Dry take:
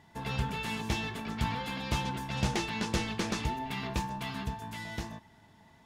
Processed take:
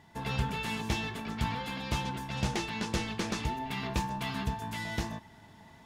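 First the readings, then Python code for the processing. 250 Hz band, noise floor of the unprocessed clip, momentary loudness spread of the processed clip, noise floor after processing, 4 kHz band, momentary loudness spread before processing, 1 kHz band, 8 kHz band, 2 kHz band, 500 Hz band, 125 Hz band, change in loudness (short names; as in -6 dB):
0.0 dB, -60 dBFS, 4 LU, -56 dBFS, 0.0 dB, 7 LU, +0.5 dB, -0.5 dB, 0.0 dB, 0.0 dB, 0.0 dB, 0.0 dB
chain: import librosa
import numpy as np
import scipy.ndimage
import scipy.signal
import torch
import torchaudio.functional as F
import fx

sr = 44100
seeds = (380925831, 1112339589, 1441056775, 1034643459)

y = fx.rider(x, sr, range_db=10, speed_s=2.0)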